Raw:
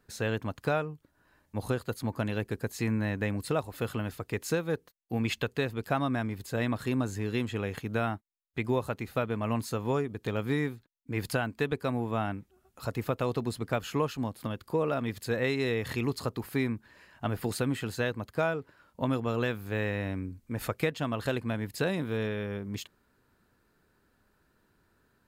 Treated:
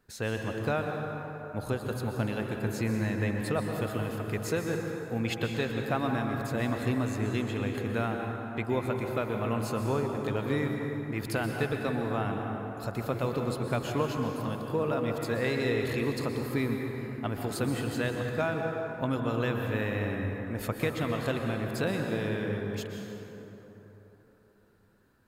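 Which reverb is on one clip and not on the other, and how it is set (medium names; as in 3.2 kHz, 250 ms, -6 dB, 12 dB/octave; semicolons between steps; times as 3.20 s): plate-style reverb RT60 3.8 s, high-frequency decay 0.45×, pre-delay 110 ms, DRR 2 dB; trim -1.5 dB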